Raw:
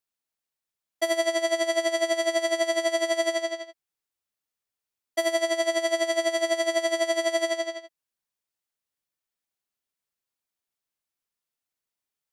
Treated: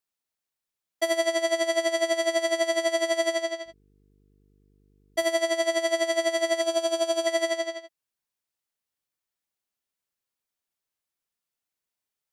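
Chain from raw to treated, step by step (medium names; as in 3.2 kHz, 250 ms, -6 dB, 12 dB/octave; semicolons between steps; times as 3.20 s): 3.65–5.22 s: mains buzz 50 Hz, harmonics 9, -63 dBFS -4 dB/octave; 6.61–7.27 s: band-stop 2 kHz, Q 6.3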